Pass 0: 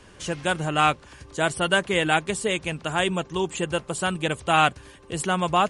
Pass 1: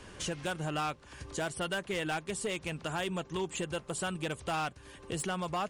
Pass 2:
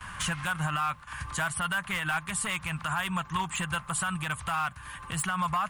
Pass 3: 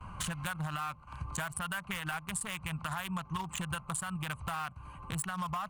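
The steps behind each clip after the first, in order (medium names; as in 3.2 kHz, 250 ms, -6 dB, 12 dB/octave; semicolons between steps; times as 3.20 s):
compression 2.5:1, threshold -35 dBFS, peak gain reduction 14 dB; hard clipper -28 dBFS, distortion -14 dB
gate with hold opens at -44 dBFS; FFT filter 170 Hz 0 dB, 410 Hz -22 dB, 1.1 kHz +10 dB, 5.6 kHz -6 dB, 13 kHz +9 dB; peak limiter -27 dBFS, peak gain reduction 9 dB; trim +7 dB
local Wiener filter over 25 samples; treble shelf 6.6 kHz +8.5 dB; compression, threshold -34 dBFS, peak gain reduction 9 dB; trim +1 dB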